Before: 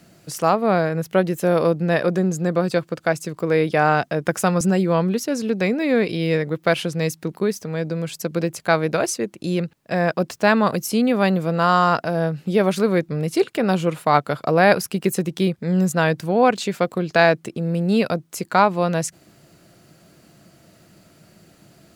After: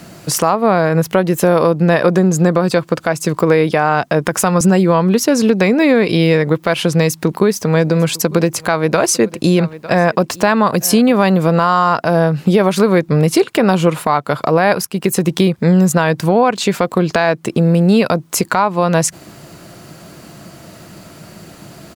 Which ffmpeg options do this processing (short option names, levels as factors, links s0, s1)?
-filter_complex "[0:a]asplit=3[s0][s1][s2];[s0]afade=t=out:st=7.75:d=0.02[s3];[s1]aecho=1:1:901:0.0631,afade=t=in:st=7.75:d=0.02,afade=t=out:st=11.31:d=0.02[s4];[s2]afade=t=in:st=11.31:d=0.02[s5];[s3][s4][s5]amix=inputs=3:normalize=0,asplit=2[s6][s7];[s6]atrim=end=14.85,asetpts=PTS-STARTPTS,afade=t=out:st=14.846:d=0.004:c=hsin:silence=0.199526[s8];[s7]atrim=start=14.85,asetpts=PTS-STARTPTS,afade=t=in:d=0.57:silence=0.199526[s9];[s8][s9]concat=n=2:v=0:a=1,equalizer=f=1000:t=o:w=0.53:g=5.5,acompressor=threshold=0.0794:ratio=6,alimiter=level_in=5.62:limit=0.891:release=50:level=0:latency=1,volume=0.891"